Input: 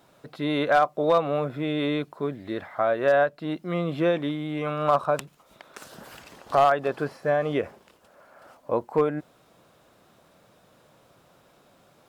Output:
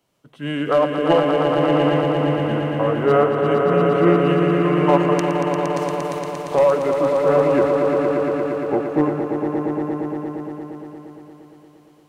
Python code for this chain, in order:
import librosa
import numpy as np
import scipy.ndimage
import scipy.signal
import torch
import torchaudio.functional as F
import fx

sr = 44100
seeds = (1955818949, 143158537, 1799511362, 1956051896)

y = fx.formant_shift(x, sr, semitones=-4)
y = fx.echo_swell(y, sr, ms=116, loudest=5, wet_db=-6.0)
y = fx.band_widen(y, sr, depth_pct=40)
y = F.gain(torch.from_numpy(y), 3.5).numpy()